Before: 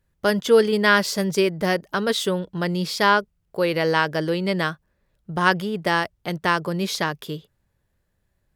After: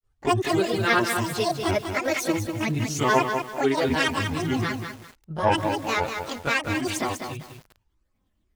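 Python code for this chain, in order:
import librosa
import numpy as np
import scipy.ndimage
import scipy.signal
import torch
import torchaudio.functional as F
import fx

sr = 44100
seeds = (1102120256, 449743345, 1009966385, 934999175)

y = fx.granulator(x, sr, seeds[0], grain_ms=100.0, per_s=20.0, spray_ms=11.0, spread_st=12)
y = fx.chorus_voices(y, sr, voices=4, hz=0.38, base_ms=20, depth_ms=2.0, mix_pct=70)
y = fx.echo_crushed(y, sr, ms=195, feedback_pct=35, bits=7, wet_db=-6)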